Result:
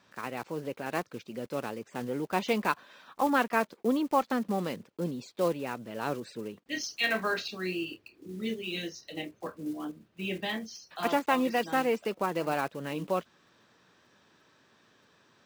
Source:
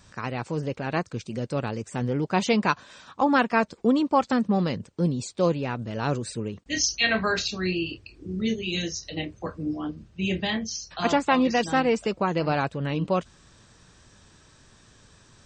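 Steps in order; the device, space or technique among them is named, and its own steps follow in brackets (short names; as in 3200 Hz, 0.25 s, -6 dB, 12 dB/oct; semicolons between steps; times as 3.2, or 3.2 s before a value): early digital voice recorder (BPF 240–3700 Hz; block floating point 5-bit); gain -4.5 dB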